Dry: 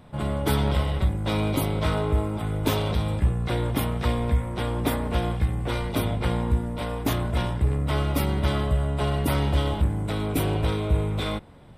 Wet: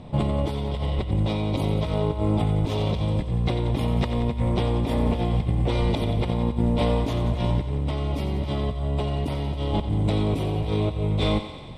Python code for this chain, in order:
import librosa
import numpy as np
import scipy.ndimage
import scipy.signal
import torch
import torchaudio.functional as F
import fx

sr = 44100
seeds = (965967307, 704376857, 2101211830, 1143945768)

y = fx.peak_eq(x, sr, hz=1500.0, db=-14.0, octaves=0.68)
y = fx.over_compress(y, sr, threshold_db=-29.0, ratio=-1.0)
y = fx.air_absorb(y, sr, metres=81.0)
y = fx.echo_thinned(y, sr, ms=90, feedback_pct=71, hz=420.0, wet_db=-10.0)
y = y * 10.0 ** (5.0 / 20.0)